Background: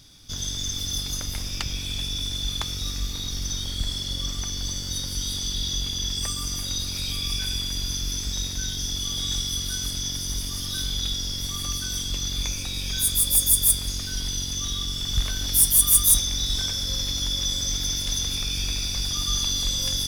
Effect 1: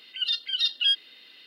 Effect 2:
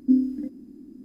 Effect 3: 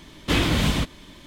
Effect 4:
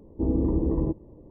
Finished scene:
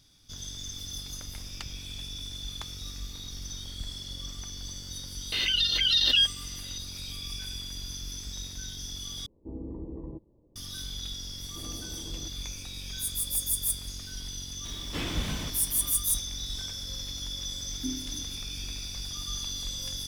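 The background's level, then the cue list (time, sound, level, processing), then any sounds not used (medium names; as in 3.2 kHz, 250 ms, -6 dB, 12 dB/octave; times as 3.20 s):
background -10 dB
5.32 s: add 1 -0.5 dB + swell ahead of each attack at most 23 dB/s
9.26 s: replace with 4 -15 dB
11.36 s: add 4 -16 dB + saturation -25.5 dBFS
14.65 s: add 3 -14 dB + jump at every zero crossing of -29 dBFS
17.75 s: add 2 -10.5 dB + rippled Chebyshev low-pass 500 Hz, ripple 6 dB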